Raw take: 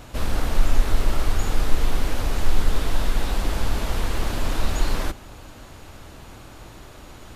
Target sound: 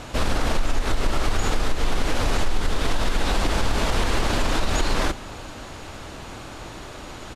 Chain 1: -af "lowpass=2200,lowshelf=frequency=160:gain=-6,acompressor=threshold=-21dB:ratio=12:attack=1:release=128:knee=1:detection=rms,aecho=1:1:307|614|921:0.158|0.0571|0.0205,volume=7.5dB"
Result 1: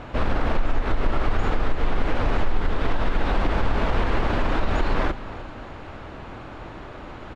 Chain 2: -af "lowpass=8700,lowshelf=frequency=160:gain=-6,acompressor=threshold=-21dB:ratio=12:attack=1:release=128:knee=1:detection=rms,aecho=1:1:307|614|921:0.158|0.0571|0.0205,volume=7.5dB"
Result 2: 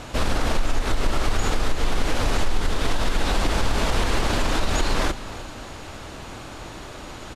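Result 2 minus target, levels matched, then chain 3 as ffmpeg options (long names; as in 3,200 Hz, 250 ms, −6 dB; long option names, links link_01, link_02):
echo-to-direct +7.5 dB
-af "lowpass=8700,lowshelf=frequency=160:gain=-6,acompressor=threshold=-21dB:ratio=12:attack=1:release=128:knee=1:detection=rms,aecho=1:1:307|614:0.0668|0.0241,volume=7.5dB"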